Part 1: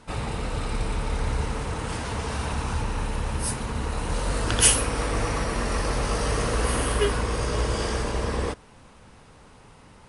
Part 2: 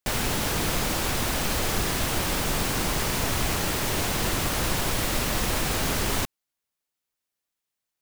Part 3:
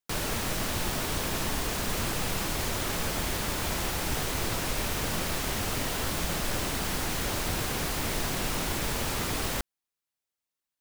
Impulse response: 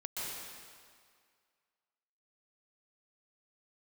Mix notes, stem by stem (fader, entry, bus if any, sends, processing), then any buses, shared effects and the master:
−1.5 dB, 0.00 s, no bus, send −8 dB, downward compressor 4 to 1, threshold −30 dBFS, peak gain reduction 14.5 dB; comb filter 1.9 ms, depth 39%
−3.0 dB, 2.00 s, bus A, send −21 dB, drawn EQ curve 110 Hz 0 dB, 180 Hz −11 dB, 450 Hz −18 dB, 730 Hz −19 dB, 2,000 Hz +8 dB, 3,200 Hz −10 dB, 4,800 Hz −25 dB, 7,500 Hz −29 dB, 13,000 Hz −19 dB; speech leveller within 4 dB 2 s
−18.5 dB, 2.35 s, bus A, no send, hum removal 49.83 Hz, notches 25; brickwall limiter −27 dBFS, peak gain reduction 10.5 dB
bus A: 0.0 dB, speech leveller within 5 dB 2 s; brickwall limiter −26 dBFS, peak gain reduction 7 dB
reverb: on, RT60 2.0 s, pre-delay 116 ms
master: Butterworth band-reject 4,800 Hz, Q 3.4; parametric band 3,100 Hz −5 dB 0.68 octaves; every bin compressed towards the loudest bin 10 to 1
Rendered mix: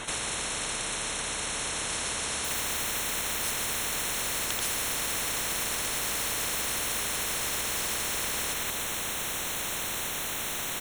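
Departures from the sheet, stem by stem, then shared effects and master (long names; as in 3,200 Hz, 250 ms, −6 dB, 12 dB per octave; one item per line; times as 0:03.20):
stem 2: entry 2.00 s → 2.45 s
stem 3: missing brickwall limiter −27 dBFS, peak gain reduction 10.5 dB
master: missing parametric band 3,100 Hz −5 dB 0.68 octaves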